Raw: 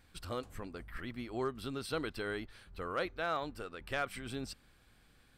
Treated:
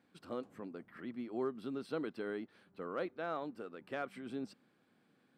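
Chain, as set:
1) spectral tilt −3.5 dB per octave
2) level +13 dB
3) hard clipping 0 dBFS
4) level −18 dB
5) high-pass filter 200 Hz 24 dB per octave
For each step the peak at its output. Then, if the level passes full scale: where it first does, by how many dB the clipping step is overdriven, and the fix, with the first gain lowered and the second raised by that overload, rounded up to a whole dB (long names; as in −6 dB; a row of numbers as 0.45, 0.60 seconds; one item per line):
−17.5, −4.5, −4.5, −22.5, −26.5 dBFS
no step passes full scale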